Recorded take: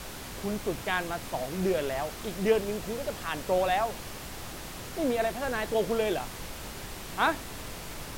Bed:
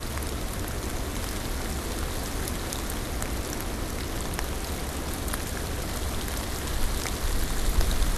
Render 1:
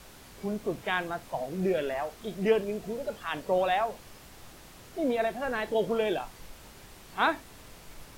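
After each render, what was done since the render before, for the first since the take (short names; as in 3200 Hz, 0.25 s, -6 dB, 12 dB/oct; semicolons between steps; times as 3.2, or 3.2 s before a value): noise print and reduce 10 dB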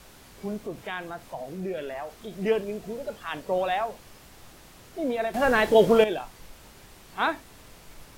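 0.66–2.39 compressor 1.5:1, threshold -36 dBFS; 5.34–6.04 gain +10 dB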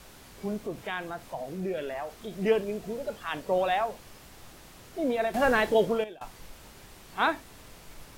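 5.34–6.21 fade out, to -22.5 dB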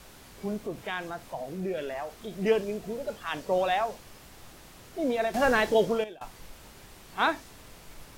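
dynamic EQ 5700 Hz, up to +5 dB, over -53 dBFS, Q 1.4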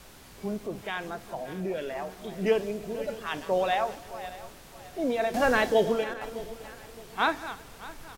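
regenerating reverse delay 0.307 s, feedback 55%, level -13 dB; feedback echo 0.163 s, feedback 52%, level -22 dB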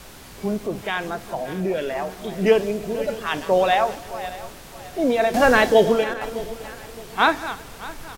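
gain +8 dB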